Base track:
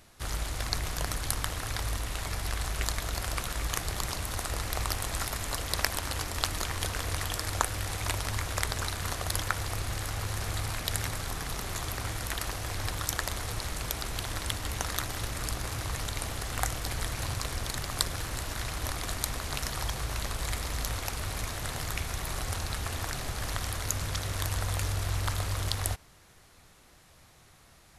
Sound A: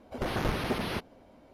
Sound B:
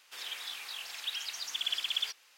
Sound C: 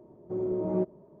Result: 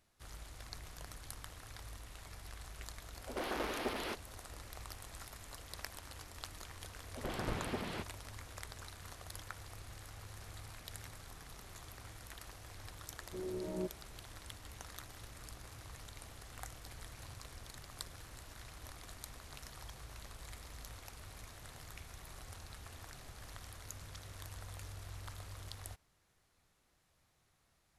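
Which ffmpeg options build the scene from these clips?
ffmpeg -i bed.wav -i cue0.wav -i cue1.wav -i cue2.wav -filter_complex "[1:a]asplit=2[link_01][link_02];[0:a]volume=-17.5dB[link_03];[link_01]highpass=frequency=260:width=0.5412,highpass=frequency=260:width=1.3066[link_04];[link_02]lowpass=6000[link_05];[link_04]atrim=end=1.53,asetpts=PTS-STARTPTS,volume=-6dB,afade=type=in:duration=0.004:curve=hsin,afade=type=out:start_time=1.526:duration=0.004:curve=hsin,adelay=3150[link_06];[link_05]atrim=end=1.53,asetpts=PTS-STARTPTS,volume=-9dB,afade=type=in:duration=0.004:curve=hsin,afade=type=out:start_time=1.526:duration=0.004:curve=hsin,adelay=7030[link_07];[3:a]atrim=end=1.2,asetpts=PTS-STARTPTS,volume=-11.5dB,afade=type=in:duration=0.004:curve=hsin,afade=type=out:start_time=1.196:duration=0.004:curve=hsin,adelay=13030[link_08];[link_03][link_06][link_07][link_08]amix=inputs=4:normalize=0" out.wav

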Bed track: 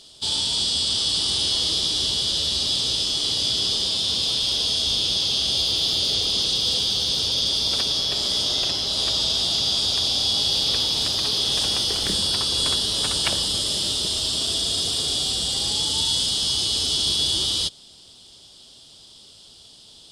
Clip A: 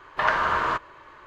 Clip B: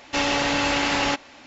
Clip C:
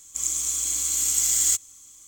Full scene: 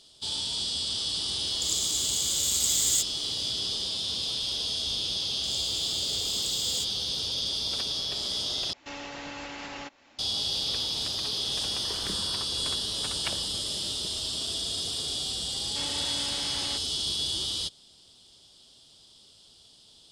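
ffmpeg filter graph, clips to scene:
ffmpeg -i bed.wav -i cue0.wav -i cue1.wav -i cue2.wav -filter_complex "[3:a]asplit=2[link_01][link_02];[2:a]asplit=2[link_03][link_04];[0:a]volume=-8dB[link_05];[link_03]alimiter=limit=-18.5dB:level=0:latency=1:release=197[link_06];[1:a]acompressor=threshold=-35dB:ratio=6:attack=3.2:release=140:knee=1:detection=peak[link_07];[link_05]asplit=2[link_08][link_09];[link_08]atrim=end=8.734[link_10];[link_06]atrim=end=1.46,asetpts=PTS-STARTPTS,volume=-11.5dB[link_11];[link_09]atrim=start=10.186[link_12];[link_01]atrim=end=2.07,asetpts=PTS-STARTPTS,volume=-4.5dB,afade=type=in:duration=0.004:curve=hsin,afade=type=out:start_time=2.066:duration=0.004:curve=hsin,adelay=1460[link_13];[link_02]atrim=end=2.07,asetpts=PTS-STARTPTS,volume=-14.5dB,afade=type=in:duration=0.004:curve=hsin,afade=type=out:start_time=2.066:duration=0.004:curve=hsin,adelay=5280[link_14];[link_07]atrim=end=1.26,asetpts=PTS-STARTPTS,volume=-11dB,afade=type=in:duration=0.004:curve=hsin,afade=type=out:start_time=1.256:duration=0.004:curve=hsin,adelay=11660[link_15];[link_04]atrim=end=1.46,asetpts=PTS-STARTPTS,volume=-18dB,afade=type=in:duration=0.004:curve=hsin,afade=type=out:start_time=1.456:duration=0.004:curve=hsin,adelay=15620[link_16];[link_10][link_11]acrossfade=duration=0.004:curve1=hsin:curve2=hsin[link_17];[link_17][link_12]acrossfade=duration=0.004:curve1=hsin:curve2=hsin[link_18];[link_18][link_13][link_14][link_15][link_16]amix=inputs=5:normalize=0" out.wav

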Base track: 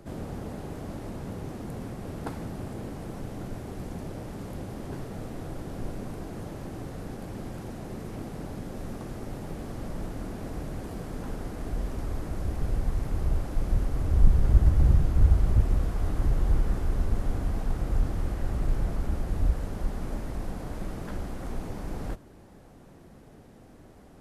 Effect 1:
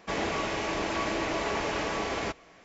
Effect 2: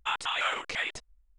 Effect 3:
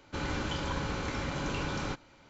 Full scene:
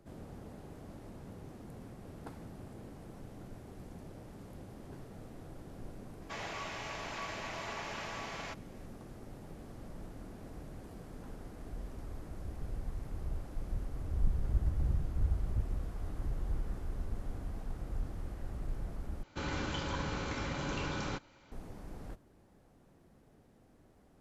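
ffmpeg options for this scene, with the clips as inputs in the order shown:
ffmpeg -i bed.wav -i cue0.wav -i cue1.wav -i cue2.wav -filter_complex "[0:a]volume=-12dB[link_01];[1:a]highpass=670[link_02];[link_01]asplit=2[link_03][link_04];[link_03]atrim=end=19.234[link_05];[3:a]atrim=end=2.29,asetpts=PTS-STARTPTS,volume=-3dB[link_06];[link_04]atrim=start=21.516[link_07];[link_02]atrim=end=2.64,asetpts=PTS-STARTPTS,volume=-9dB,afade=type=in:duration=0.004:curve=hsin,afade=type=out:start_time=2.636:duration=0.004:curve=hsin,adelay=6220[link_08];[link_05][link_06]acrossfade=duration=0.004:curve1=hsin:curve2=hsin[link_09];[link_09][link_07]acrossfade=duration=0.004:curve1=hsin:curve2=hsin[link_10];[link_10][link_08]amix=inputs=2:normalize=0" out.wav

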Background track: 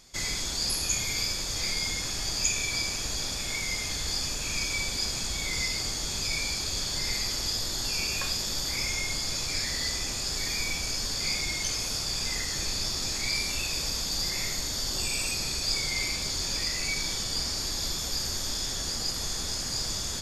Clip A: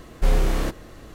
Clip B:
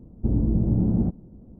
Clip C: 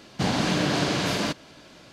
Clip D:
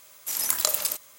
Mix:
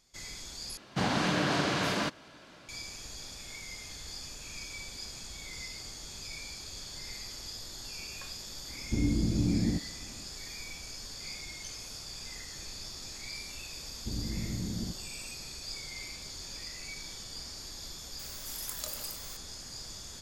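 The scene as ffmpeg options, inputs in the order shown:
ffmpeg -i bed.wav -i cue0.wav -i cue1.wav -i cue2.wav -i cue3.wav -filter_complex "[2:a]asplit=2[link_01][link_02];[0:a]volume=-12.5dB[link_03];[3:a]equalizer=frequency=1300:width_type=o:width=1.5:gain=5[link_04];[link_01]equalizer=frequency=290:width=5.2:gain=8.5[link_05];[4:a]aeval=exprs='val(0)+0.5*0.0531*sgn(val(0))':channel_layout=same[link_06];[link_03]asplit=2[link_07][link_08];[link_07]atrim=end=0.774[link_09];[link_04]atrim=end=1.92,asetpts=PTS-STARTPTS,volume=-6dB[link_10];[link_08]atrim=start=2.686[link_11];[link_05]atrim=end=1.59,asetpts=PTS-STARTPTS,volume=-8dB,afade=type=in:duration=0.004:curve=hsin,afade=type=out:start_time=1.586:duration=0.004:curve=hsin,adelay=8680[link_12];[link_02]atrim=end=1.59,asetpts=PTS-STARTPTS,volume=-14.5dB,afade=type=in:duration=0.004:curve=hsin,afade=type=out:start_time=1.586:duration=0.004:curve=hsin,adelay=13820[link_13];[link_06]atrim=end=1.18,asetpts=PTS-STARTPTS,volume=-17.5dB,afade=type=in:duration=0.004:curve=hsin,afade=type=out:start_time=1.176:duration=0.004:curve=hsin,adelay=18190[link_14];[link_09][link_10]acrossfade=duration=0.004:curve1=hsin:curve2=hsin[link_15];[link_15][link_11]acrossfade=duration=0.004:curve1=hsin:curve2=hsin[link_16];[link_16][link_12][link_13][link_14]amix=inputs=4:normalize=0" out.wav

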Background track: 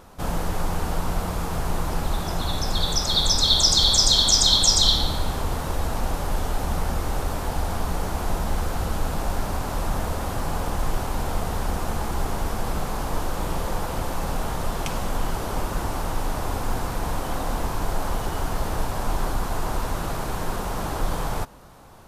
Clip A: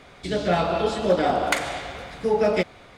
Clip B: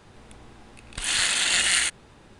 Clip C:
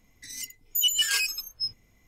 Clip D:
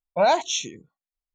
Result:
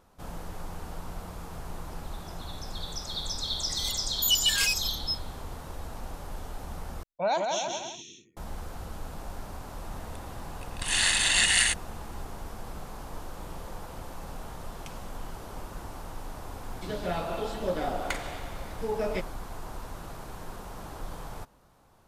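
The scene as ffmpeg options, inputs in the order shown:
ffmpeg -i bed.wav -i cue0.wav -i cue1.wav -i cue2.wav -i cue3.wav -filter_complex "[0:a]volume=-13.5dB[link_01];[4:a]aecho=1:1:170|306|414.8|501.8|571.5:0.631|0.398|0.251|0.158|0.1[link_02];[2:a]aecho=1:1:1.1:0.4[link_03];[link_01]asplit=2[link_04][link_05];[link_04]atrim=end=7.034[link_06];[link_02]atrim=end=1.34,asetpts=PTS-STARTPTS,volume=-8.5dB[link_07];[link_05]atrim=start=8.366[link_08];[3:a]atrim=end=2.07,asetpts=PTS-STARTPTS,volume=-1dB,afade=type=in:duration=0.004:curve=hsin,afade=type=out:start_time=2.066:duration=0.004:curve=hsin,adelay=3470[link_09];[link_03]atrim=end=2.39,asetpts=PTS-STARTPTS,volume=-2dB,afade=type=in:duration=0.004:curve=hsin,afade=type=out:start_time=2.386:duration=0.004:curve=hsin,adelay=9840[link_10];[1:a]atrim=end=2.97,asetpts=PTS-STARTPTS,volume=-10dB,afade=type=in:duration=0.004:curve=hsin,afade=type=out:start_time=2.966:duration=0.004:curve=hsin,adelay=16580[link_11];[link_06][link_07]acrossfade=duration=0.004:curve1=hsin:curve2=hsin[link_12];[link_12][link_08]acrossfade=duration=0.004:curve1=hsin:curve2=hsin[link_13];[link_13][link_09][link_10][link_11]amix=inputs=4:normalize=0" out.wav

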